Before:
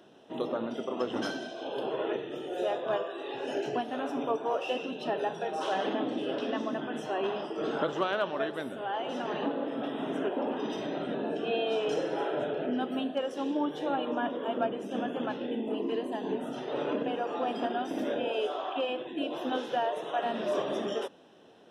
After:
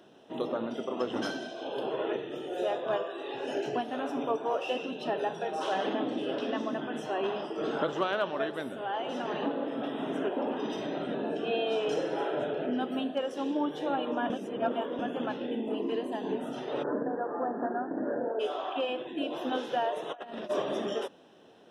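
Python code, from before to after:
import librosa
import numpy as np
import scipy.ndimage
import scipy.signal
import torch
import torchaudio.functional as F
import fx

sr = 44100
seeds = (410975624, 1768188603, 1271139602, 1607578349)

y = fx.cheby1_lowpass(x, sr, hz=1800.0, order=8, at=(16.82, 18.39), fade=0.02)
y = fx.over_compress(y, sr, threshold_db=-37.0, ratio=-0.5, at=(20.09, 20.49), fade=0.02)
y = fx.edit(y, sr, fx.reverse_span(start_s=14.3, length_s=0.69), tone=tone)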